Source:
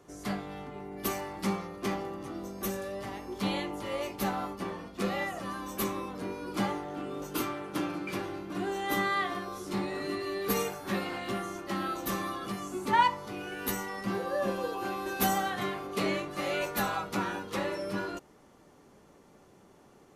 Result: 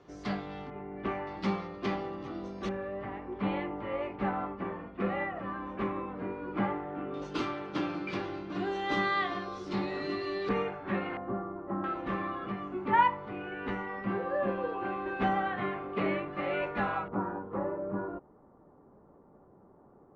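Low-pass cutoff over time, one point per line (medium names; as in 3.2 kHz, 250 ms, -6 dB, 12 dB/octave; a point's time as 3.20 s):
low-pass 24 dB/octave
4.9 kHz
from 0.70 s 2.4 kHz
from 1.27 s 4.4 kHz
from 2.69 s 2.3 kHz
from 7.14 s 4.8 kHz
from 10.49 s 2.5 kHz
from 11.17 s 1.2 kHz
from 11.84 s 2.5 kHz
from 17.08 s 1.2 kHz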